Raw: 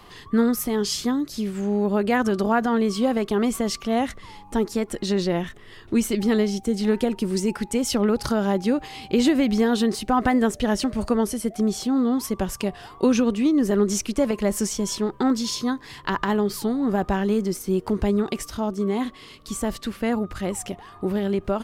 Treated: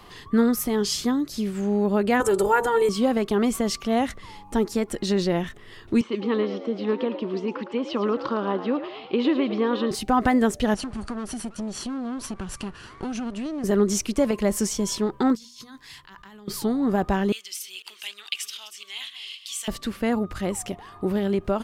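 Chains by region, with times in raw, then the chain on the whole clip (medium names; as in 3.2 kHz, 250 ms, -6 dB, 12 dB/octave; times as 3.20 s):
2.20–2.89 s: resonant high shelf 6.5 kHz +6.5 dB, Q 3 + comb 2.2 ms, depth 93% + de-hum 58.7 Hz, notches 22
6.01–9.91 s: cabinet simulation 290–3300 Hz, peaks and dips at 690 Hz -10 dB, 1.1 kHz +9 dB, 1.5 kHz -6 dB, 2.1 kHz -5 dB + frequency-shifting echo 110 ms, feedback 50%, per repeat +67 Hz, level -11.5 dB
10.74–13.64 s: comb filter that takes the minimum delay 0.69 ms + steep low-pass 11 kHz 96 dB/octave + compression 4:1, threshold -29 dBFS
15.35–16.48 s: amplifier tone stack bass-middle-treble 5-5-5 + compressor with a negative ratio -45 dBFS + hum notches 60/120/180/240 Hz
17.32–19.68 s: chunks repeated in reverse 252 ms, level -11 dB + resonant high-pass 2.9 kHz, resonance Q 3.8
whole clip: none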